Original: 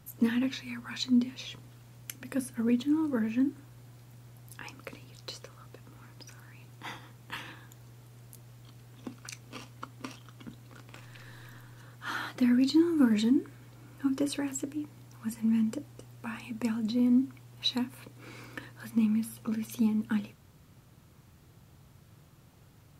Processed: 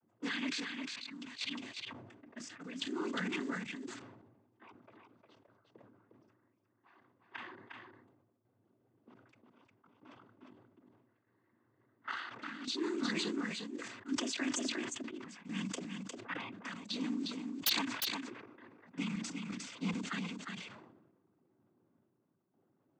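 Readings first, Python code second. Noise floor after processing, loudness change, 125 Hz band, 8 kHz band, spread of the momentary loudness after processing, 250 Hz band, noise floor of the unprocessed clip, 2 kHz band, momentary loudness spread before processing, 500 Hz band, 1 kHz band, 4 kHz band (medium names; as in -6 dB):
-77 dBFS, -9.0 dB, -7.5 dB, 0.0 dB, 16 LU, -12.0 dB, -58 dBFS, +0.5 dB, 23 LU, -6.5 dB, -1.5 dB, -0.5 dB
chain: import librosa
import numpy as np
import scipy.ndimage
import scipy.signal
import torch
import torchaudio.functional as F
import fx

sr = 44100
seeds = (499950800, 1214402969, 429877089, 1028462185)

p1 = scipy.signal.sosfilt(scipy.signal.butter(4, 170.0, 'highpass', fs=sr, output='sos'), x)
p2 = fx.env_lowpass(p1, sr, base_hz=310.0, full_db=-27.5)
p3 = fx.tilt_shelf(p2, sr, db=-9.0, hz=710.0)
p4 = p3 + 0.47 * np.pad(p3, (int(3.0 * sr / 1000.0), 0))[:len(p3)]
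p5 = fx.level_steps(p4, sr, step_db=19)
p6 = fx.noise_vocoder(p5, sr, seeds[0], bands=16)
p7 = fx.chopper(p6, sr, hz=0.71, depth_pct=65, duty_pct=60)
p8 = 10.0 ** (-24.5 / 20.0) * (np.abs((p7 / 10.0 ** (-24.5 / 20.0) + 3.0) % 4.0 - 2.0) - 1.0)
p9 = p8 + fx.echo_single(p8, sr, ms=356, db=-5.0, dry=0)
p10 = fx.sustainer(p9, sr, db_per_s=48.0)
y = p10 * librosa.db_to_amplitude(1.0)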